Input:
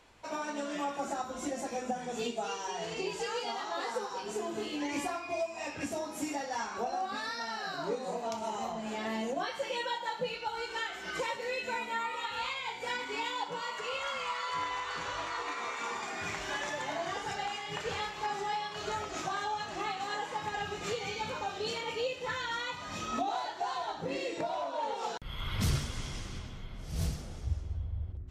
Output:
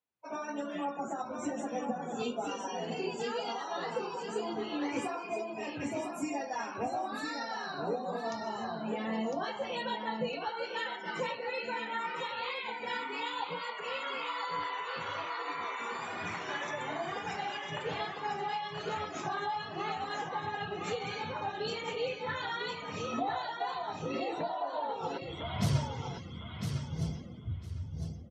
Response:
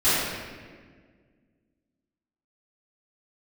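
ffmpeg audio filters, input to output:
-af "highpass=frequency=99:width=0.5412,highpass=frequency=99:width=1.3066,afftdn=noise_reduction=29:noise_floor=-45,lowshelf=frequency=130:gain=10.5,dynaudnorm=framelen=110:gausssize=5:maxgain=5dB,flanger=delay=3.8:depth=4.5:regen=-54:speed=1.1:shape=sinusoidal,aecho=1:1:1005|2010|3015:0.501|0.0902|0.0162,volume=-2.5dB"

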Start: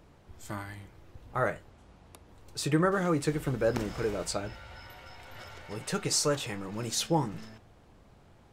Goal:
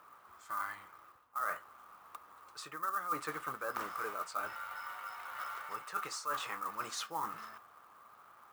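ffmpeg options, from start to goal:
ffmpeg -i in.wav -af "bandpass=frequency=1200:width_type=q:width=7.7:csg=0,acrusher=bits=7:mode=log:mix=0:aa=0.000001,crystalizer=i=3.5:c=0,areverse,acompressor=threshold=-50dB:ratio=6,areverse,volume=15dB" out.wav

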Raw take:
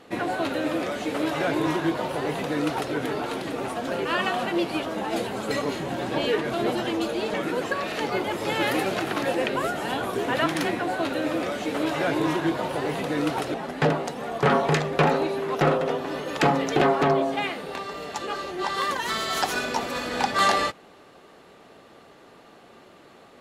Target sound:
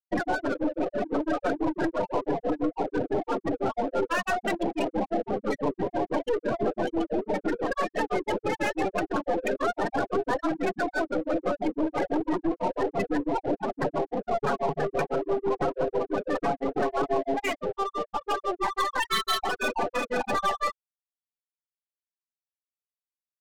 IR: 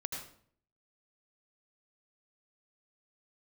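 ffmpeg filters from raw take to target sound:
-filter_complex "[0:a]aecho=1:1:10|57:0.398|0.224,tremolo=f=6:d=0.97,acompressor=threshold=-28dB:ratio=8,asettb=1/sr,asplit=3[link_01][link_02][link_03];[link_01]atrim=end=14.414[link_04];[link_02]atrim=start=14.41:end=16.48,asetpts=PTS-STARTPTS,afade=type=in:duration=0.004:curve=qsin,afade=type=out:start_time=2.066:duration=0.004:curve=qsin,highpass=frequency=58:width=0.5412,highpass=frequency=58:width=1.3066[link_05];[link_03]atrim=start=16.476[link_06];[link_04][link_05]acrossfade=duration=0.004:curve1=hsin:curve2=qsin[link_07];[link_07][link_06]acrossfade=duration=0.004:curve1=qsin:curve2=hsin,aeval=exprs='0.126*(cos(1*acos(clip(val(0)/0.126,-1,1)))-cos(1*PI/2))+0.0562*(cos(5*acos(clip(val(0)/0.126,-1,1)))-cos(5*PI/2))+0.0316*(cos(8*acos(clip(val(0)/0.126,-1,1)))-cos(8*PI/2))':channel_layout=same,afftfilt=real='re*gte(hypot(re,im),0.126)':imag='im*gte(hypot(re,im),0.126)':win_size=1024:overlap=0.75,bass=frequency=250:gain=-4,treble=frequency=4000:gain=9,adynamicsmooth=sensitivity=6:basefreq=610"

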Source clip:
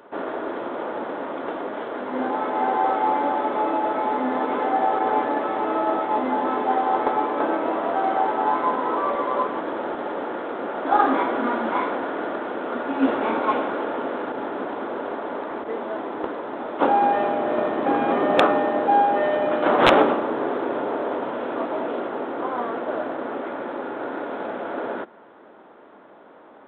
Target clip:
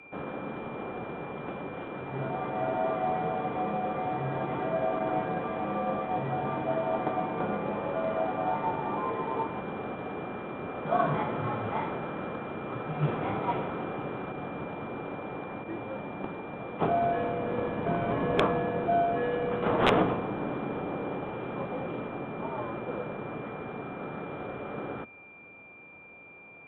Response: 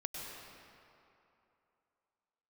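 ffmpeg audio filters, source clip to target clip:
-af "aeval=exprs='val(0)+0.00891*sin(2*PI*2500*n/s)':channel_layout=same,afreqshift=-120,volume=-8dB"

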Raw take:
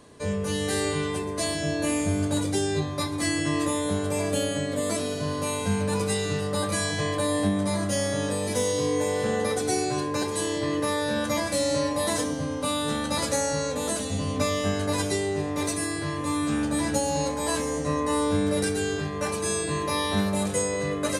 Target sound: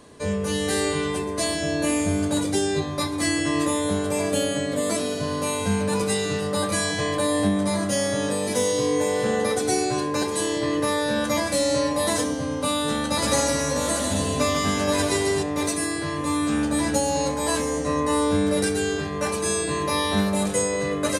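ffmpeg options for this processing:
ffmpeg -i in.wav -filter_complex "[0:a]bandreject=frequency=50:width_type=h:width=6,bandreject=frequency=100:width_type=h:width=6,bandreject=frequency=150:width_type=h:width=6,asplit=3[link_01][link_02][link_03];[link_01]afade=type=out:start_time=13.23:duration=0.02[link_04];[link_02]aecho=1:1:150|270|366|442.8|504.2:0.631|0.398|0.251|0.158|0.1,afade=type=in:start_time=13.23:duration=0.02,afade=type=out:start_time=15.42:duration=0.02[link_05];[link_03]afade=type=in:start_time=15.42:duration=0.02[link_06];[link_04][link_05][link_06]amix=inputs=3:normalize=0,volume=3dB" out.wav

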